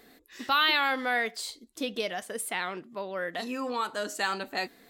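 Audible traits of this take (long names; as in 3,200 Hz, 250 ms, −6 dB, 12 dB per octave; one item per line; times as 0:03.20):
background noise floor −59 dBFS
spectral slope −1.5 dB per octave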